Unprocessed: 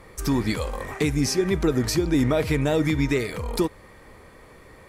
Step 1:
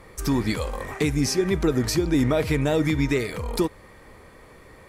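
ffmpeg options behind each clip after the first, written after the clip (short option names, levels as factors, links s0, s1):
-af anull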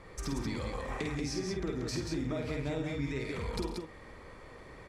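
-filter_complex "[0:a]lowpass=7000,acompressor=threshold=0.0316:ratio=6,asplit=2[s0][s1];[s1]aecho=0:1:50|103|137|167|184|228:0.631|0.2|0.15|0.211|0.631|0.106[s2];[s0][s2]amix=inputs=2:normalize=0,volume=0.562"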